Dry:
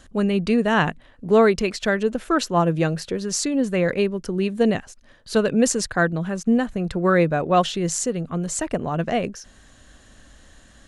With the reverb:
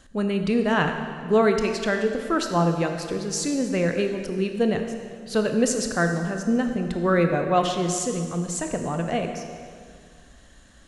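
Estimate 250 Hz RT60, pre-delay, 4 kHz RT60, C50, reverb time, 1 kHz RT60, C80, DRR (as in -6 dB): 2.2 s, 20 ms, 1.8 s, 6.0 dB, 2.1 s, 2.1 s, 7.0 dB, 5.0 dB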